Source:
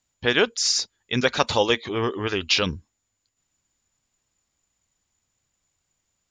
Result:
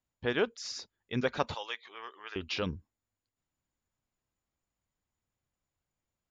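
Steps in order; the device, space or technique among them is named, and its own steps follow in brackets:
0:01.54–0:02.36: high-pass filter 1,300 Hz 12 dB per octave
through cloth (low-pass filter 7,100 Hz; high-shelf EQ 2,300 Hz −12 dB)
level −7.5 dB

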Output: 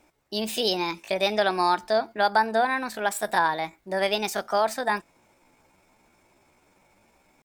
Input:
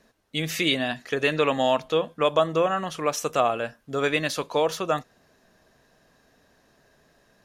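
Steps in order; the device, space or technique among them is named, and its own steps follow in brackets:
parametric band 3,000 Hz −2.5 dB 2 octaves
chipmunk voice (pitch shifter +5.5 semitones)

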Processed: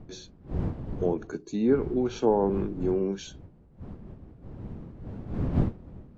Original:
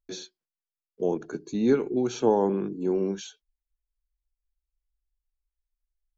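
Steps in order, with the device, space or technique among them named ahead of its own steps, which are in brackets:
treble cut that deepens with the level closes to 1,500 Hz, closed at −18.5 dBFS
smartphone video outdoors (wind on the microphone 190 Hz −34 dBFS; automatic gain control gain up to 5 dB; level −5.5 dB; AAC 48 kbit/s 22,050 Hz)

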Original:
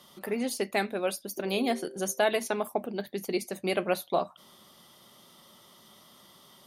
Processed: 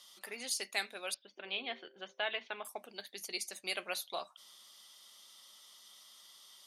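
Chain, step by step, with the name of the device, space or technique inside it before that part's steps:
0:01.14–0:02.65: Chebyshev low-pass filter 3,300 Hz, order 4
piezo pickup straight into a mixer (low-pass filter 6,600 Hz 12 dB per octave; first difference)
level +6.5 dB

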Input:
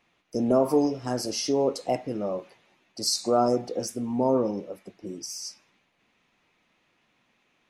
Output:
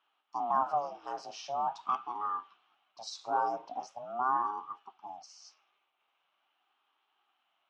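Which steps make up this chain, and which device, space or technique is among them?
voice changer toy (ring modulator whose carrier an LFO sweeps 410 Hz, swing 55%, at 0.43 Hz; loudspeaker in its box 490–5,000 Hz, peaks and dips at 490 Hz −9 dB, 790 Hz +7 dB, 1,200 Hz +9 dB, 1,900 Hz −7 dB, 3,000 Hz +5 dB, 4,600 Hz −8 dB)
level −6.5 dB

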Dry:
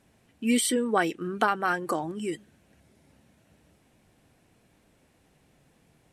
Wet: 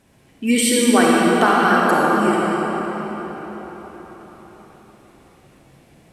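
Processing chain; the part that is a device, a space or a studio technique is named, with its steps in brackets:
cathedral (convolution reverb RT60 5.0 s, pre-delay 37 ms, DRR −5 dB)
level +6 dB

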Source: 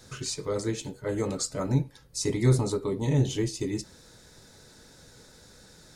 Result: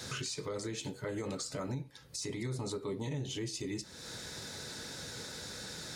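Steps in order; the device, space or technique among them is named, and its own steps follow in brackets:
broadcast voice chain (high-pass filter 75 Hz; de-essing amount 60%; downward compressor 3 to 1, threshold −46 dBFS, peak gain reduction 21.5 dB; parametric band 3,000 Hz +5.5 dB 2.3 octaves; brickwall limiter −36 dBFS, peak gain reduction 8 dB)
level +7 dB

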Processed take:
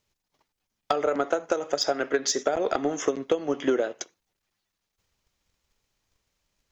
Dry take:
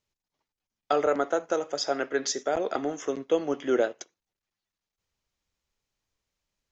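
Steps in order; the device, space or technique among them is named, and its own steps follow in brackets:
drum-bus smash (transient designer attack +8 dB, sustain +2 dB; downward compressor 16 to 1, threshold −25 dBFS, peak gain reduction 15 dB; soft clipping −18.5 dBFS, distortion −17 dB)
level +6.5 dB

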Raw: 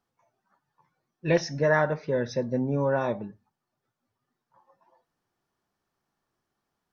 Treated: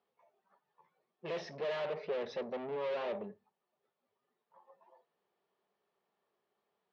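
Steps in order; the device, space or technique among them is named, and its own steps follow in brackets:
guitar amplifier (tube saturation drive 37 dB, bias 0.4; bass and treble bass −10 dB, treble +6 dB; loudspeaker in its box 100–3,500 Hz, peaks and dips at 120 Hz −10 dB, 190 Hz +5 dB, 290 Hz −8 dB, 420 Hz +9 dB, 590 Hz +4 dB, 1,500 Hz −6 dB)

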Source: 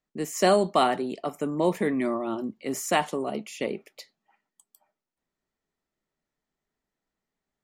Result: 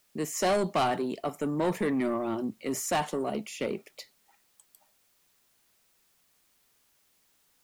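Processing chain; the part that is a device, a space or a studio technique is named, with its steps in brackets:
open-reel tape (soft clipping −21.5 dBFS, distortion −10 dB; parametric band 110 Hz +4.5 dB; white noise bed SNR 36 dB)

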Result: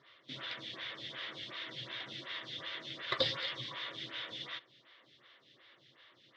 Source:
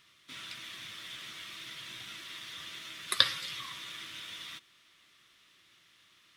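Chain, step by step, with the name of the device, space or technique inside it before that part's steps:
vibe pedal into a guitar amplifier (phaser with staggered stages 2.7 Hz; tube saturation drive 30 dB, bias 0.35; loudspeaker in its box 110–4,000 Hz, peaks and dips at 130 Hz +8 dB, 180 Hz −9 dB, 530 Hz +8 dB, 1,300 Hz −6 dB, 2,500 Hz −8 dB)
level +9.5 dB

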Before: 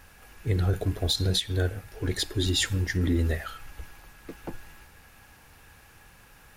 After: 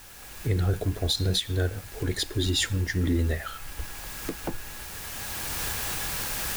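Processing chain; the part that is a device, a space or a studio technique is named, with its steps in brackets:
cheap recorder with automatic gain (white noise bed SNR 20 dB; camcorder AGC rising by 12 dB per second)

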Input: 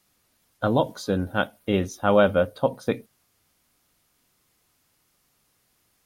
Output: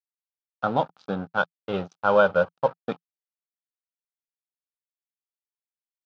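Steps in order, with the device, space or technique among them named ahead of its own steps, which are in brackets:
0:01.37–0:02.75: comb filter 2 ms, depth 56%
blown loudspeaker (dead-zone distortion −33 dBFS; loudspeaker in its box 140–4,900 Hz, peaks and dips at 170 Hz +7 dB, 340 Hz −5 dB, 790 Hz +9 dB, 1,300 Hz +10 dB, 2,000 Hz −9 dB)
level −3.5 dB

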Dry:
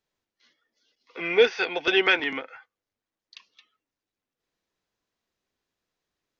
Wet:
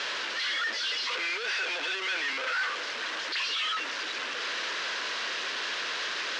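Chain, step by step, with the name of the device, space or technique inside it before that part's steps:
home computer beeper (sign of each sample alone; loudspeaker in its box 670–5,200 Hz, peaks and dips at 770 Hz −8 dB, 1,600 Hz +5 dB, 2,900 Hz +3 dB)

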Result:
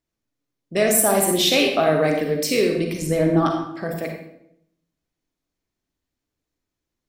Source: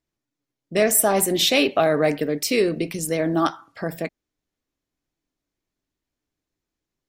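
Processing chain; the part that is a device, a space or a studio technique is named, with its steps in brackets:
0:03.02–0:03.66: spectral tilt −2 dB per octave
bathroom (convolution reverb RT60 0.80 s, pre-delay 37 ms, DRR 2.5 dB)
level −1 dB

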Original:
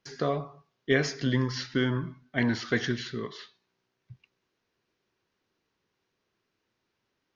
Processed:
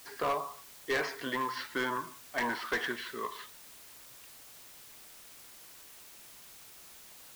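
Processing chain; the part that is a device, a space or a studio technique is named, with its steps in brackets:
drive-through speaker (band-pass filter 490–3,000 Hz; parametric band 1,000 Hz +11.5 dB 0.45 octaves; hard clipping −26 dBFS, distortion −10 dB; white noise bed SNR 14 dB)

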